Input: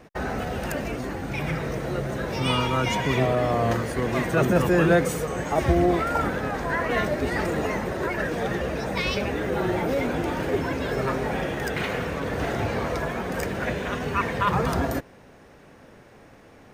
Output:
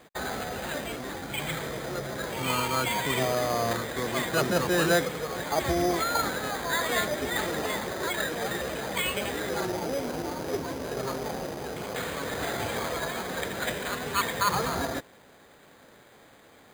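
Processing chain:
0:09.65–0:11.96: running median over 25 samples
spectral tilt +2.5 dB per octave
bad sample-rate conversion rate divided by 8×, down filtered, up hold
level −2 dB

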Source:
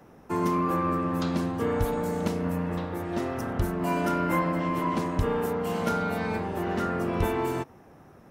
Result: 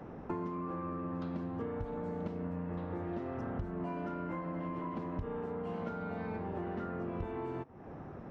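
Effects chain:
downward compressor 12 to 1, threshold −41 dBFS, peak gain reduction 22 dB
head-to-tape spacing loss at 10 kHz 33 dB
level +7 dB

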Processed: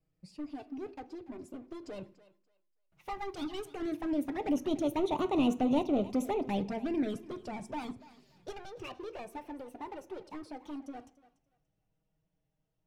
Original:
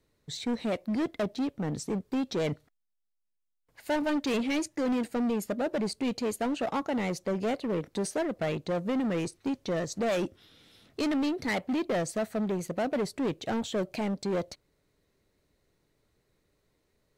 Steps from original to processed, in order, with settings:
gliding playback speed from 113% → 154%
source passing by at 0:05.50, 23 m/s, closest 22 metres
in parallel at −2.5 dB: brickwall limiter −59 dBFS, peak gain reduction 35 dB
on the sum: flanger swept by the level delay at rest 6.3 ms, full sweep at −29.5 dBFS
bass and treble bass +10 dB, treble −6 dB
feedback echo with a high-pass in the loop 289 ms, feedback 22%, high-pass 450 Hz, level −17 dB
on a send at −9 dB: convolution reverb RT60 0.45 s, pre-delay 3 ms

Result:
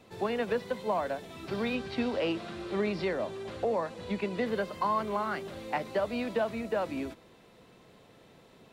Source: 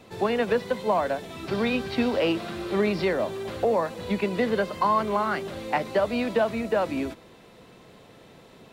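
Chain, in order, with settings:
0:01.75–0:04.46: low-pass filter 9,200 Hz 12 dB per octave
level −6.5 dB

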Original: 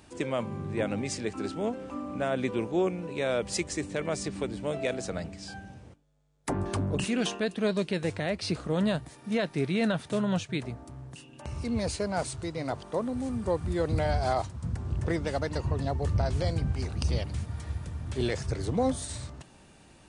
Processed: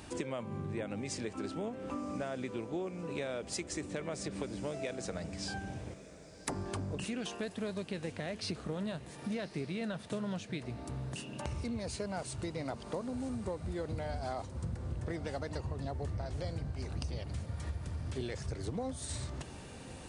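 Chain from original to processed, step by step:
downward compressor 8 to 1, threshold −41 dBFS, peak gain reduction 18.5 dB
feedback delay with all-pass diffusion 1,083 ms, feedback 54%, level −15 dB
level +5.5 dB

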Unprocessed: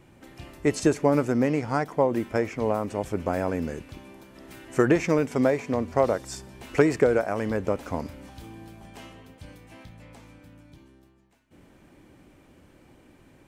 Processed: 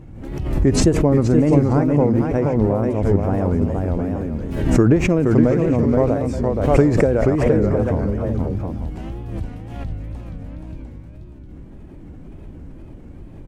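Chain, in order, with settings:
0:07.35–0:07.88: all-pass dispersion lows, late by 129 ms, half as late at 510 Hz
on a send: multi-tap delay 476/709/887 ms −4.5/−7.5/−15.5 dB
on the sum: tape wow and flutter 130 cents
spectral tilt −4.5 dB per octave
in parallel at −1 dB: downward compressor, threshold −26 dBFS, peak gain reduction 18 dB
on the sum: high-shelf EQ 4,700 Hz +8.5 dB
background raised ahead of every attack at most 50 dB per second
level −3.5 dB

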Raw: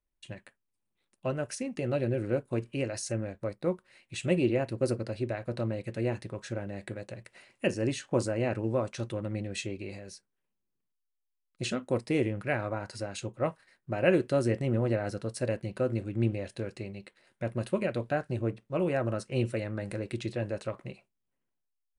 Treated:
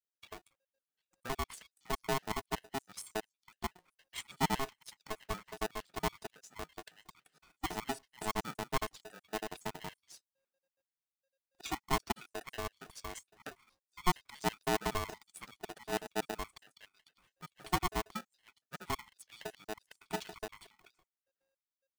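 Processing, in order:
time-frequency cells dropped at random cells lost 76%
ring modulator with a square carrier 540 Hz
level −2.5 dB

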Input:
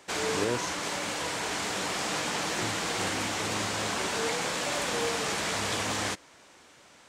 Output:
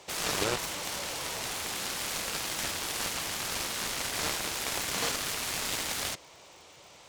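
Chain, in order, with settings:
graphic EQ with 15 bands 250 Hz −11 dB, 1,600 Hz −10 dB, 10,000 Hz −6 dB
harmonic generator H 7 −8 dB, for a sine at −19.5 dBFS
surface crackle 190 per second −49 dBFS

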